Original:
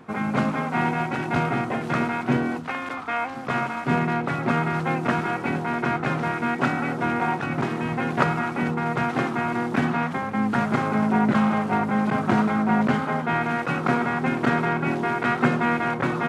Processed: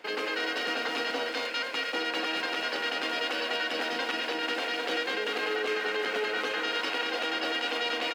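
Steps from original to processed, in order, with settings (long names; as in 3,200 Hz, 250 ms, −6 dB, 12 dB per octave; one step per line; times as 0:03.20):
repeating echo 424 ms, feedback 58%, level −6.5 dB
wrong playback speed 7.5 ips tape played at 15 ips
low-pass filter 2,400 Hz 6 dB per octave
spectral tilt +3 dB per octave
brickwall limiter −16.5 dBFS, peak gain reduction 11 dB
high-pass filter 65 Hz
level −4.5 dB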